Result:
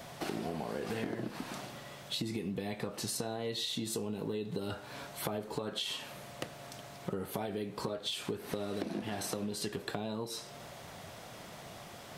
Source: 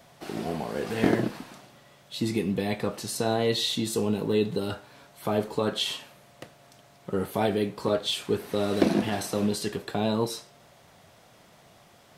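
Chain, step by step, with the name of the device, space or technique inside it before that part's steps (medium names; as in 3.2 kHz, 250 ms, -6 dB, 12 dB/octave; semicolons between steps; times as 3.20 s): serial compression, leveller first (compression 3:1, threshold -29 dBFS, peak gain reduction 10.5 dB; compression 5:1, threshold -42 dBFS, peak gain reduction 16.5 dB); trim +7 dB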